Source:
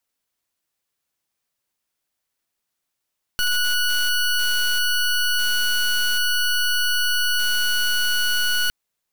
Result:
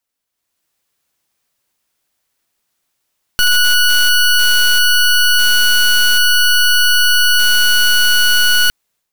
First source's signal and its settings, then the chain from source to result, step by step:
pulse 1.47 kHz, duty 18% -20 dBFS 5.31 s
level rider gain up to 9.5 dB

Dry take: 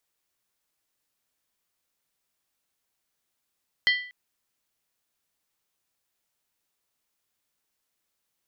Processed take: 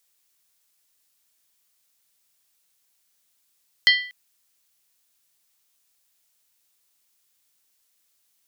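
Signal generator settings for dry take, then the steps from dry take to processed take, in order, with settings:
skin hit length 0.24 s, lowest mode 1.98 kHz, decay 0.49 s, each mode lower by 5 dB, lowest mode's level -16.5 dB
treble shelf 2.4 kHz +12 dB

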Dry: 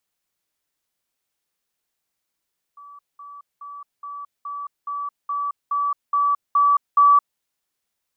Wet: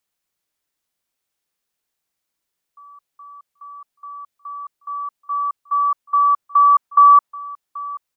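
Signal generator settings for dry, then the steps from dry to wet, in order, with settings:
level ladder 1.15 kHz -40 dBFS, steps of 3 dB, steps 11, 0.22 s 0.20 s
dynamic bell 1.1 kHz, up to +5 dB, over -28 dBFS, Q 0.87; delay 782 ms -20 dB

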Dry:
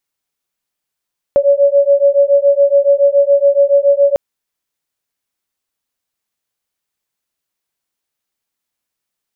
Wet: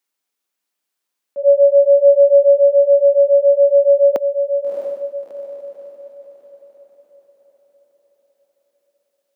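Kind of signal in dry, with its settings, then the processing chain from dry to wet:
beating tones 560 Hz, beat 7.1 Hz, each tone -10.5 dBFS 2.80 s
high-pass 210 Hz 24 dB/octave; slow attack 124 ms; on a send: echo that smears into a reverb 660 ms, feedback 46%, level -7 dB

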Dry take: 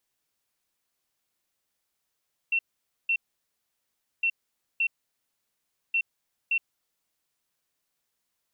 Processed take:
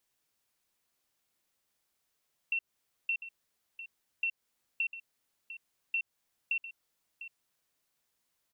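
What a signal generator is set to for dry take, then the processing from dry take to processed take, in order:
beep pattern sine 2.71 kHz, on 0.07 s, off 0.50 s, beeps 2, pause 1.07 s, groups 3, -21.5 dBFS
compression 4:1, threshold -32 dBFS; echo from a far wall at 120 m, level -8 dB

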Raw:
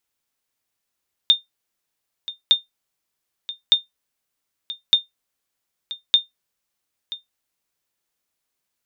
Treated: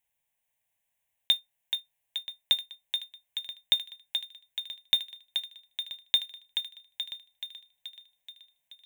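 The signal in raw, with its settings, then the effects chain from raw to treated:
sonar ping 3.63 kHz, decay 0.15 s, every 1.21 s, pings 5, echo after 0.98 s, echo -16.5 dB -5 dBFS
block-companded coder 5-bit; static phaser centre 1.3 kHz, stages 6; on a send: thinning echo 429 ms, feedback 63%, high-pass 590 Hz, level -6.5 dB

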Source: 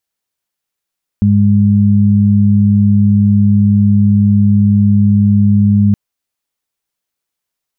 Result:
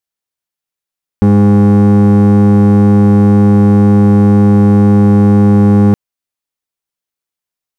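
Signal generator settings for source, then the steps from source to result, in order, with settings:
steady additive tone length 4.72 s, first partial 102 Hz, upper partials 1 dB, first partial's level -9.5 dB
waveshaping leveller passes 3

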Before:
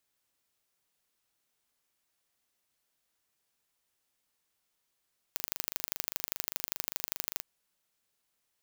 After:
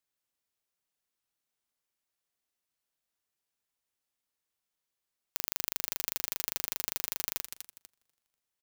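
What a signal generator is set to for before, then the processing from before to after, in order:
pulse train 25 per s, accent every 2, -4.5 dBFS 2.07 s
in parallel at -12 dB: integer overflow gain 12.5 dB; on the sum: frequency-shifting echo 245 ms, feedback 55%, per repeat -47 Hz, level -23 dB; waveshaping leveller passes 5

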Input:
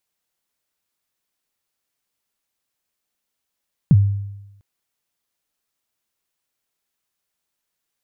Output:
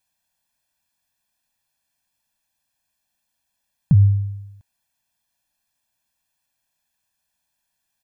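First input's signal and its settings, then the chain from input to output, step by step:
kick drum length 0.70 s, from 190 Hz, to 100 Hz, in 40 ms, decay 0.96 s, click off, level -6 dB
comb 1.2 ms, depth 93%; peak limiter -8 dBFS

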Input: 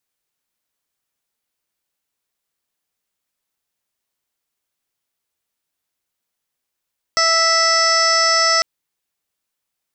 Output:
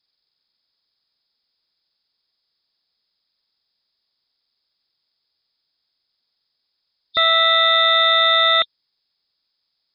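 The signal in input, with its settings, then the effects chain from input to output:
steady additive tone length 1.45 s, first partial 658 Hz, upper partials 4/2/-13.5/-17/-13/-3.5/5.5/-2/-19.5/-18/-13 dB, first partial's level -22 dB
knee-point frequency compression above 3.2 kHz 4:1

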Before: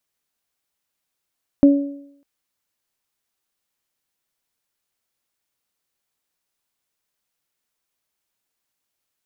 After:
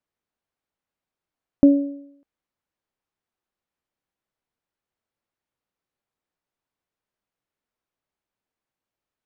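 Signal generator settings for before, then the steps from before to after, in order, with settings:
additive tone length 0.60 s, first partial 282 Hz, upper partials -11 dB, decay 0.69 s, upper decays 0.70 s, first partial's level -5.5 dB
low-pass 1.1 kHz 6 dB/octave

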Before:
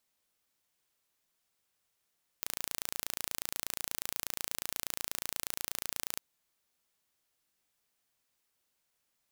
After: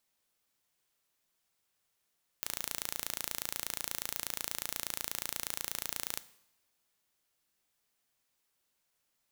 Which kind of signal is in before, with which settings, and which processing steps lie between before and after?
pulse train 28.3 per s, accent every 0, -7.5 dBFS 3.78 s
two-slope reverb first 0.72 s, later 2.2 s, from -22 dB, DRR 14 dB

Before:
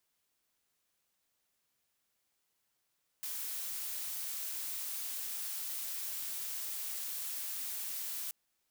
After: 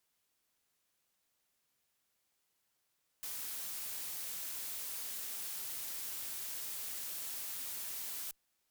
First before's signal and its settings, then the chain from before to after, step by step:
noise blue, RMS -39.5 dBFS 5.08 s
one-sided clip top -42 dBFS

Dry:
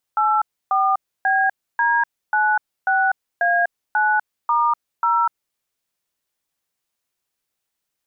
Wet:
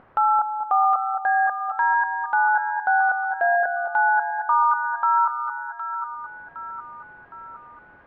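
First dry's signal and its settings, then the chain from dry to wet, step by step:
DTMF "84BD96A9*0", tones 247 ms, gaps 293 ms, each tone -17.5 dBFS
low-pass 1.5 kHz 24 dB/octave; upward compressor, threshold -27 dBFS; on a send: two-band feedback delay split 1.1 kHz, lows 217 ms, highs 763 ms, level -7 dB

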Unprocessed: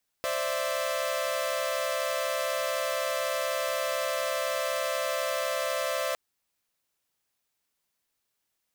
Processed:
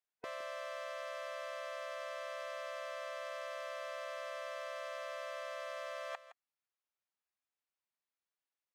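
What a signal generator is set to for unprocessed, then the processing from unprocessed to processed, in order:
chord C5/D5/E5 saw, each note -29.5 dBFS 5.91 s
band-pass filter 1.2 kHz, Q 0.52; spectral noise reduction 12 dB; delay 165 ms -14.5 dB

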